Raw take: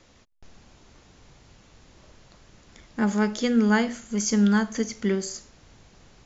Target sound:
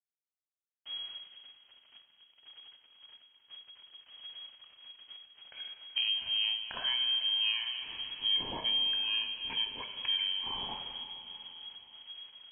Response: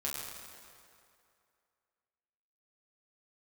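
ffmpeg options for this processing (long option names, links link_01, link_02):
-filter_complex "[0:a]agate=range=-33dB:threshold=-45dB:ratio=3:detection=peak,asubboost=boost=5:cutoff=72,acompressor=threshold=-34dB:ratio=10,aeval=exprs='sgn(val(0))*max(abs(val(0))-0.00126,0)':channel_layout=same,asplit=2[link_01][link_02];[1:a]atrim=start_sample=2205[link_03];[link_02][link_03]afir=irnorm=-1:irlink=0,volume=-4dB[link_04];[link_01][link_04]amix=inputs=2:normalize=0,asetrate=22050,aresample=44100,lowpass=frequency=2800:width_type=q:width=0.5098,lowpass=frequency=2800:width_type=q:width=0.6013,lowpass=frequency=2800:width_type=q:width=0.9,lowpass=frequency=2800:width_type=q:width=2.563,afreqshift=-3300"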